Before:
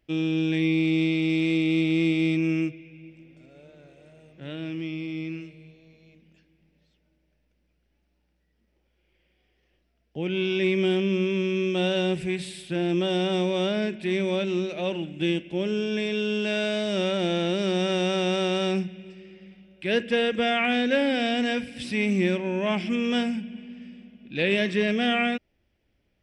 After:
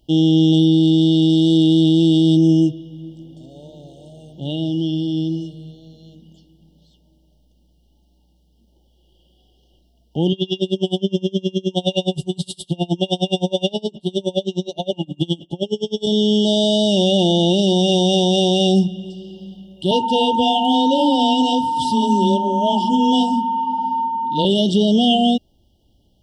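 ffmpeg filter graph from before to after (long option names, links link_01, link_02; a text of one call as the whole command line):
ffmpeg -i in.wav -filter_complex "[0:a]asettb=1/sr,asplit=3[link_01][link_02][link_03];[link_01]atrim=end=10.324[link_04];[link_02]atrim=start=10.32:end=16.07,asetpts=PTS-STARTPTS,afade=type=in:duration=0.004:curve=qsin,afade=type=out:start_time=5.746:duration=0.004:curve=qsin,aecho=1:1:7.1:0.47,atrim=end_sample=253575,aeval=exprs='val(0)*pow(10,-32*(0.5-0.5*cos(2*PI*9.6*n/s))/20)':channel_layout=same[link_05];[link_03]atrim=start=16.066[link_06];[link_04][link_05]acrossfade=duration=0.004:curve1=hsin:curve2=qsin[link_07];[link_07][link_06]acrossfade=duration=0.004:curve1=qsin:curve2=hsin,asettb=1/sr,asplit=3[link_08][link_09][link_10];[link_08]atrim=end=19.914[link_11];[link_09]atrim=start=19.91:end=24.45,asetpts=PTS-STARTPTS,afade=type=in:duration=0.004:curve=qsin,afade=type=out:start_time=4.536:duration=0.004:curve=qsin,afreqshift=14,aeval=exprs='val(0)+0.0447*sin(2*PI*910*n/s)':channel_layout=same,flanger=delay=6.3:depth=6:regen=-41:speed=1.1:shape=sinusoidal[link_12];[link_10]atrim=start=24.446[link_13];[link_11][link_12]acrossfade=duration=0.004:curve1=hsin:curve2=qsin[link_14];[link_14][link_13]acrossfade=duration=0.004:curve1=qsin:curve2=hsin,equalizer=frequency=480:width_type=o:width=0.9:gain=-6,afftfilt=real='re*(1-between(b*sr/4096,920,2800))':imag='im*(1-between(b*sr/4096,920,2800))':win_size=4096:overlap=0.75,alimiter=level_in=19dB:limit=-1dB:release=50:level=0:latency=1,volume=-5.5dB" out.wav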